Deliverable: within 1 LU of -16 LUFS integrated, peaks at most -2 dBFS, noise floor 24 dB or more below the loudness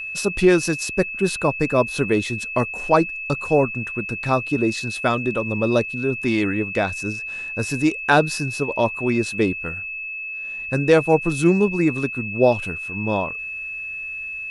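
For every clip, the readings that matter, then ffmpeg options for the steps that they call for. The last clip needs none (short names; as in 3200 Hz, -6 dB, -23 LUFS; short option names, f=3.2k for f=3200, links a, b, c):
steady tone 2600 Hz; tone level -28 dBFS; loudness -21.5 LUFS; peak -2.5 dBFS; loudness target -16.0 LUFS
-> -af "bandreject=f=2.6k:w=30"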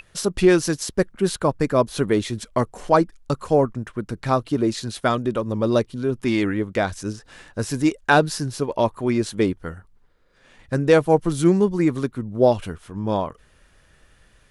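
steady tone none; loudness -22.0 LUFS; peak -3.0 dBFS; loudness target -16.0 LUFS
-> -af "volume=6dB,alimiter=limit=-2dB:level=0:latency=1"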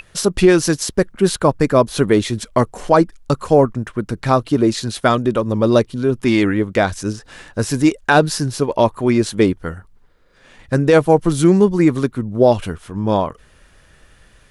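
loudness -16.5 LUFS; peak -2.0 dBFS; noise floor -51 dBFS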